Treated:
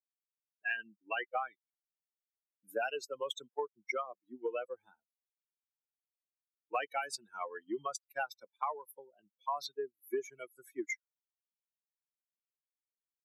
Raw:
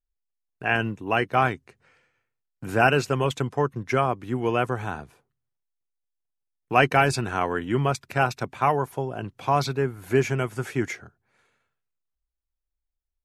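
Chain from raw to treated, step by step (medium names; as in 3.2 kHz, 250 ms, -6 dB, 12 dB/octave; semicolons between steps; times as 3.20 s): expander on every frequency bin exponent 3; high-pass 410 Hz 24 dB/octave; compression 10:1, threshold -36 dBFS, peak gain reduction 18.5 dB; trim +3.5 dB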